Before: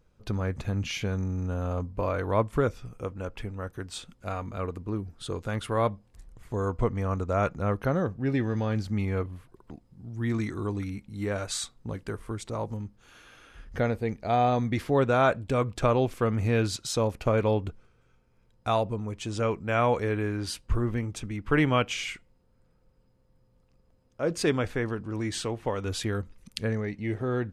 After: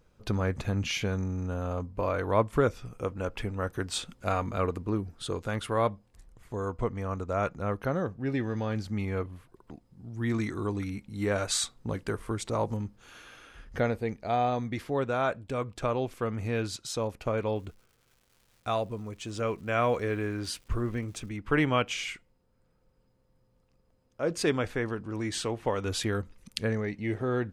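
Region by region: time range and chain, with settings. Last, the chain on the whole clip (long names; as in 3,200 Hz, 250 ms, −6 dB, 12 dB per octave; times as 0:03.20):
0:17.54–0:21.28: notch filter 870 Hz, Q 9.3 + surface crackle 470 per second −49 dBFS
whole clip: low-shelf EQ 190 Hz −4 dB; speech leveller 2 s; level −1.5 dB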